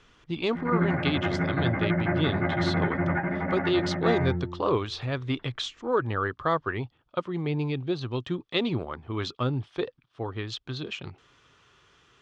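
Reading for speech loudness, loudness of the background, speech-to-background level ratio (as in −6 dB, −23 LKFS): −30.5 LKFS, −28.0 LKFS, −2.5 dB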